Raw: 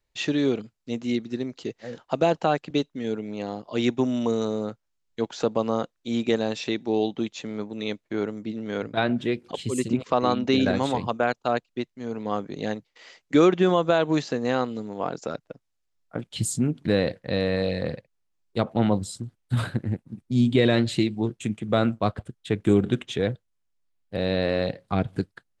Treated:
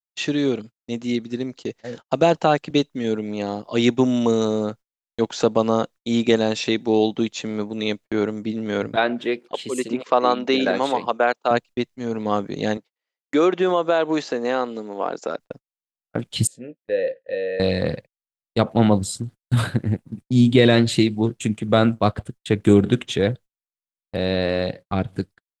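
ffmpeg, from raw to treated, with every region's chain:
-filter_complex "[0:a]asettb=1/sr,asplit=3[a][b][c];[a]atrim=end=8.964[d];[b]atrim=start=8.96:end=11.51,asetpts=PTS-STARTPTS,afade=t=in:d=0.004:c=qsin,afade=t=out:st=2.546:d=0.004:c=qsin,highpass=360,equalizer=f=10k:w=0.43:g=-8.5[e];[c]atrim=start=11.506[f];[d][e]acrossfade=d=0.004:c1=hsin:c2=qsin[g];[g][f]acrossfade=d=0.004:c1=qsin:c2=hsin,asettb=1/sr,asplit=3[h][i][j];[h]atrim=end=12.774[k];[i]atrim=start=12.77:end=15.4,asetpts=PTS-STARTPTS,afade=t=in:d=0.004:c=qsin,afade=t=out:st=2.626:d=0.004:c=qsin,highpass=320,highshelf=f=3.3k:g=-7.5,acompressor=threshold=-25dB:ratio=1.5:attack=3.2:release=140:knee=1:detection=peak[l];[j]atrim=start=15.396[m];[k][l]acrossfade=d=0.004:c1=hsin:c2=qsin[n];[n][m]acrossfade=d=0.004:c1=qsin:c2=hsin,asettb=1/sr,asplit=3[o][p][q];[o]atrim=end=16.474[r];[p]atrim=start=16.47:end=17.6,asetpts=PTS-STARTPTS,afade=t=in:d=0.004:c=qsin,afade=t=out:st=1.126:d=0.004:c=qsin,asplit=3[s][t][u];[s]bandpass=f=530:t=q:w=8,volume=0dB[v];[t]bandpass=f=1.84k:t=q:w=8,volume=-6dB[w];[u]bandpass=f=2.48k:t=q:w=8,volume=-9dB[x];[v][w][x]amix=inputs=3:normalize=0,asplit=2[y][z];[z]adelay=17,volume=-12.5dB[aa];[y][aa]amix=inputs=2:normalize=0,atrim=end_sample=49833[ab];[q]atrim=start=17.596[ac];[r][ab]acrossfade=d=0.004:c1=hsin:c2=qsin[ad];[ad][ac]acrossfade=d=0.004:c1=qsin:c2=hsin,highshelf=f=6.1k:g=4.5,dynaudnorm=f=180:g=21:m=4dB,agate=range=-42dB:threshold=-39dB:ratio=16:detection=peak,volume=2dB"

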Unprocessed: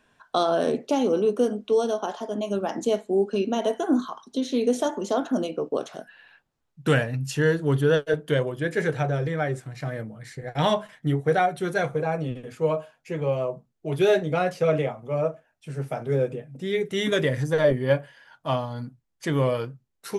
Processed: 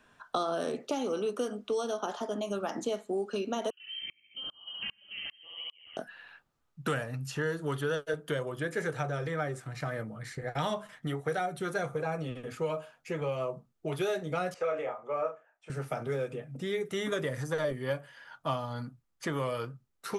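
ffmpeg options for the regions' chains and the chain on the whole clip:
-filter_complex "[0:a]asettb=1/sr,asplit=3[a][b][c];[a]atrim=end=3.704[d];[b]atrim=start=3.7:end=5.97,asetpts=PTS-STARTPTS,afade=t=in:d=0.004:c=qsin,afade=t=out:st=2.266:d=0.004:c=qsin,lowpass=f=2.9k:t=q:w=0.5098,lowpass=f=2.9k:t=q:w=0.6013,lowpass=f=2.9k:t=q:w=0.9,lowpass=f=2.9k:t=q:w=2.563,afreqshift=-3400,aecho=1:1:69|138|207|276|345|414|483:0.631|0.341|0.184|0.0994|0.0537|0.029|0.0156,atrim=end_sample=100107,aeval=exprs='val(0)*pow(10,-34*if(lt(mod(-2.5*n/s,1),2*abs(-2.5)/1000),1-mod(-2.5*n/s,1)/(2*abs(-2.5)/1000),(mod(-2.5*n/s,1)-2*abs(-2.5)/1000)/(1-2*abs(-2.5)/1000))/20)':c=same[e];[c]atrim=start=5.966[f];[d][e]acrossfade=d=0.004:c1=hsin:c2=qsin[g];[g][f]acrossfade=d=0.004:c1=qsin:c2=hsin,asettb=1/sr,asplit=3[h][i][j];[h]atrim=end=14.544[k];[i]atrim=start=14.54:end=15.7,asetpts=PTS-STARTPTS,afade=t=in:d=0.004:c=qsin,afade=t=out:st=1.156:d=0.004:c=qsin,lowpass=f=7.5k:t=q:w=2.3,acrossover=split=400 2200:gain=0.0708 1 0.141[l][m][n];[l][m][n]amix=inputs=3:normalize=0,asplit=2[o][p];[p]adelay=30,volume=-6dB[q];[o][q]amix=inputs=2:normalize=0,atrim=end_sample=51156[r];[j]atrim=start=15.696[s];[k][r]acrossfade=d=0.004:c1=hsin:c2=qsin[t];[t][s]acrossfade=d=0.004:c1=qsin:c2=hsin,acrossover=split=530|1600|5300[u][v][w][x];[u]acompressor=threshold=-36dB:ratio=4[y];[v]acompressor=threshold=-37dB:ratio=4[z];[w]acompressor=threshold=-46dB:ratio=4[aa];[x]acompressor=threshold=-49dB:ratio=4[ab];[y][z][aa][ab]amix=inputs=4:normalize=0,equalizer=f=1.2k:w=4.1:g=9,bandreject=f=1.1k:w=14"

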